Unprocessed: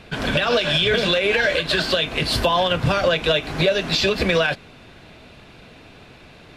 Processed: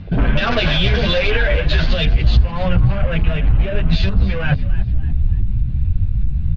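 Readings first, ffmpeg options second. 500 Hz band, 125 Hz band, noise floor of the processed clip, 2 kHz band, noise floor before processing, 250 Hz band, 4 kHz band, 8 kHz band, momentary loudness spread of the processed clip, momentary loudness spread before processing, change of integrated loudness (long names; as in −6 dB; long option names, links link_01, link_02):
−3.5 dB, +12.0 dB, −22 dBFS, −1.0 dB, −46 dBFS, +4.0 dB, −3.0 dB, below −10 dB, 5 LU, 3 LU, +1.0 dB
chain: -filter_complex "[0:a]asplit=2[link_01][link_02];[link_02]adynamicsmooth=sensitivity=1:basefreq=2400,volume=-1.5dB[link_03];[link_01][link_03]amix=inputs=2:normalize=0,asoftclip=type=tanh:threshold=-15dB,asubboost=boost=8.5:cutoff=110,afwtdn=0.0501,lowpass=frequency=4800:width=0.5412,lowpass=frequency=4800:width=1.3066,crystalizer=i=8.5:c=0,aemphasis=mode=reproduction:type=riaa,acompressor=threshold=-16dB:ratio=6,asplit=4[link_04][link_05][link_06][link_07];[link_05]adelay=291,afreqshift=66,volume=-16dB[link_08];[link_06]adelay=582,afreqshift=132,volume=-24.4dB[link_09];[link_07]adelay=873,afreqshift=198,volume=-32.8dB[link_10];[link_04][link_08][link_09][link_10]amix=inputs=4:normalize=0,asplit=2[link_11][link_12];[link_12]adelay=8.8,afreqshift=1.5[link_13];[link_11][link_13]amix=inputs=2:normalize=1,volume=7dB"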